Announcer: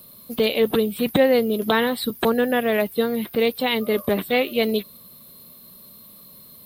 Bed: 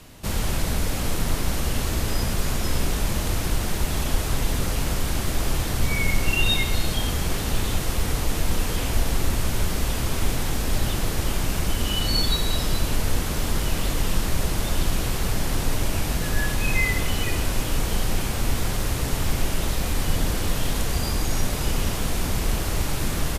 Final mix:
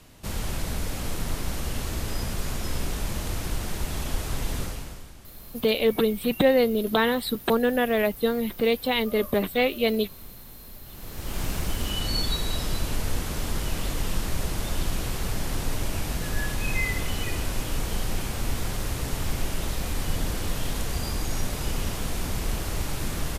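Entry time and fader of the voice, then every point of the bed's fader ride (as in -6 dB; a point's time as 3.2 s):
5.25 s, -2.5 dB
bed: 4.61 s -5.5 dB
5.17 s -23 dB
10.83 s -23 dB
11.41 s -4.5 dB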